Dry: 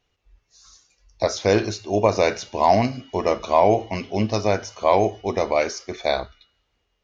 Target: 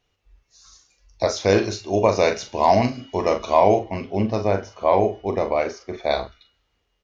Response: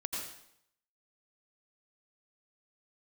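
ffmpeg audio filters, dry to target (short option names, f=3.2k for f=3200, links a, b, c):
-filter_complex "[0:a]asettb=1/sr,asplit=3[a][b][c];[a]atrim=end=3.794[d];[b]atrim=start=3.79:end=6.11,asetpts=PTS-STARTPTS,afade=t=in:d=0.004:c=qsin,afade=t=out:st=2.316:d=0.004:c=qsin,lowpass=f=1.6k:p=1[e];[c]atrim=start=6.106[f];[d][e]acrossfade=d=0.004:c1=hsin:c2=qsin[g];[g][f]acrossfade=d=0.004:c1=qsin:c2=hsin,asplit=2[h][i];[i]adelay=41,volume=-9dB[j];[h][j]amix=inputs=2:normalize=0"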